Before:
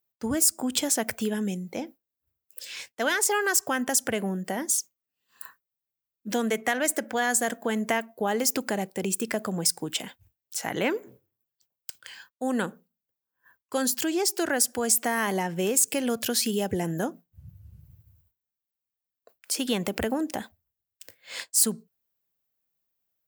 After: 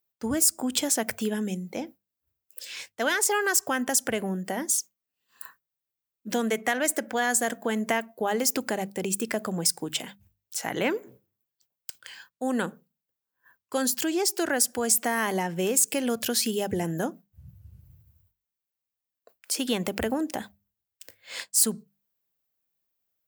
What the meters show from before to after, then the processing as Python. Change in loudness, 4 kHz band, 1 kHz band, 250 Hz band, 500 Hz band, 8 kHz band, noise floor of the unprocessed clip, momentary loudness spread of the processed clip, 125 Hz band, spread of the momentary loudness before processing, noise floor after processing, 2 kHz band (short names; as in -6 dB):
0.0 dB, 0.0 dB, 0.0 dB, -0.5 dB, 0.0 dB, 0.0 dB, under -85 dBFS, 18 LU, -0.5 dB, 17 LU, under -85 dBFS, 0.0 dB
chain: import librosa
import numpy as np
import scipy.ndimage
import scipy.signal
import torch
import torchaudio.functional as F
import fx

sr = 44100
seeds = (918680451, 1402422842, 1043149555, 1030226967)

y = fx.hum_notches(x, sr, base_hz=50, count=4)